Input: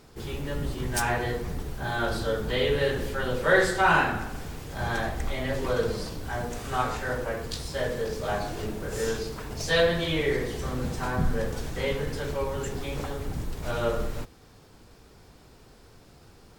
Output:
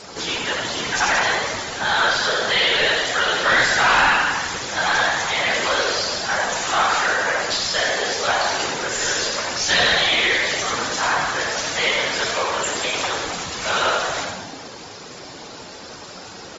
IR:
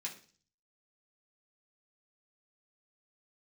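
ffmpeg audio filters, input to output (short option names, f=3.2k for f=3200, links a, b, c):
-filter_complex "[0:a]bass=f=250:g=-1,treble=f=4k:g=13,asplit=8[a][b][c][d][e][f][g][h];[b]adelay=87,afreqshift=47,volume=-6dB[i];[c]adelay=174,afreqshift=94,volume=-11.5dB[j];[d]adelay=261,afreqshift=141,volume=-17dB[k];[e]adelay=348,afreqshift=188,volume=-22.5dB[l];[f]adelay=435,afreqshift=235,volume=-28.1dB[m];[g]adelay=522,afreqshift=282,volume=-33.6dB[n];[h]adelay=609,afreqshift=329,volume=-39.1dB[o];[a][i][j][k][l][m][n][o]amix=inputs=8:normalize=0,acrossover=split=840[p][q];[p]acompressor=threshold=-41dB:ratio=6[r];[r][q]amix=inputs=2:normalize=0,afftfilt=real='hypot(re,im)*cos(2*PI*random(0))':imag='hypot(re,im)*sin(2*PI*random(1))':win_size=512:overlap=0.75,asplit=2[s][t];[t]highpass=f=720:p=1,volume=29dB,asoftclip=type=tanh:threshold=-9.5dB[u];[s][u]amix=inputs=2:normalize=0,lowpass=f=2.8k:p=1,volume=-6dB,volume=1.5dB" -ar 48000 -c:a aac -b:a 24k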